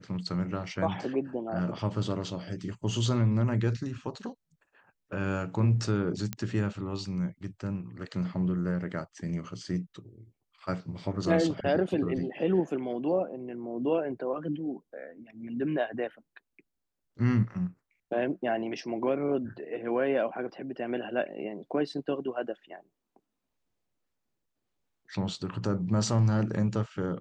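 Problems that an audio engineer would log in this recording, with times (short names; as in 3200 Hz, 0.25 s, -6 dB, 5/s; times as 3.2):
6.33 pop -16 dBFS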